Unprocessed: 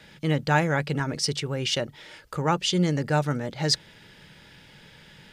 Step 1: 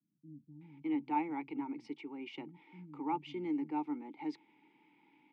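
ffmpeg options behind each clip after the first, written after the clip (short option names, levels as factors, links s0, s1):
-filter_complex "[0:a]asplit=3[s0][s1][s2];[s0]bandpass=f=300:t=q:w=8,volume=1[s3];[s1]bandpass=f=870:t=q:w=8,volume=0.501[s4];[s2]bandpass=f=2240:t=q:w=8,volume=0.355[s5];[s3][s4][s5]amix=inputs=3:normalize=0,acrossover=split=160 2900:gain=0.0708 1 0.224[s6][s7][s8];[s6][s7][s8]amix=inputs=3:normalize=0,acrossover=split=170[s9][s10];[s10]adelay=610[s11];[s9][s11]amix=inputs=2:normalize=0"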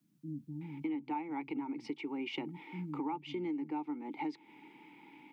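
-af "acompressor=threshold=0.00501:ratio=8,volume=3.55"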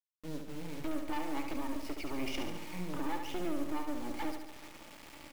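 -filter_complex "[0:a]volume=53.1,asoftclip=hard,volume=0.0188,acrusher=bits=6:dc=4:mix=0:aa=0.000001,asplit=2[s0][s1];[s1]aecho=0:1:71|142|213|284|355|426|497|568:0.473|0.284|0.17|0.102|0.0613|0.0368|0.0221|0.0132[s2];[s0][s2]amix=inputs=2:normalize=0,volume=1.78"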